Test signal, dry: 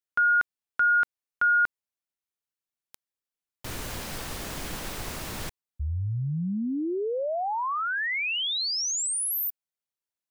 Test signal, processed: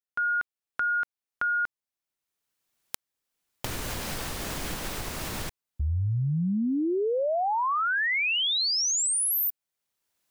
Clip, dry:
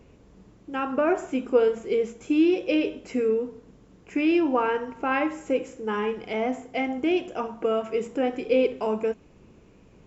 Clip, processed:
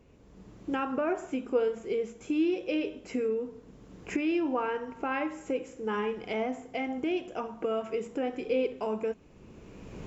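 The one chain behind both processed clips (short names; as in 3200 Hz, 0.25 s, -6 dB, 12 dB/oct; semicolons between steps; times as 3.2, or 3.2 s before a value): recorder AGC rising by 18 dB/s; gain -7 dB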